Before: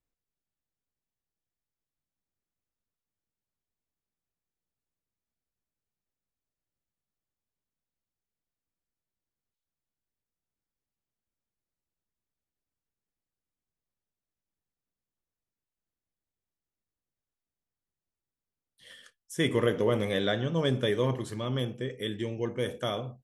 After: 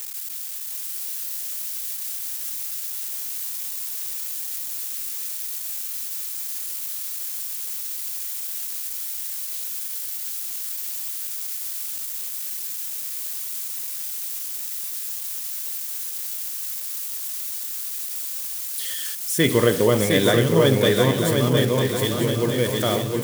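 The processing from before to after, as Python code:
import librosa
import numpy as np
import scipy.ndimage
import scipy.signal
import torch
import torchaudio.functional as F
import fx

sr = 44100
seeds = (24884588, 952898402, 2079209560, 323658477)

y = x + 0.5 * 10.0 ** (-30.0 / 20.0) * np.diff(np.sign(x), prepend=np.sign(x[:1]))
y = fx.echo_swing(y, sr, ms=946, ratio=3, feedback_pct=39, wet_db=-4)
y = y * librosa.db_to_amplitude(8.0)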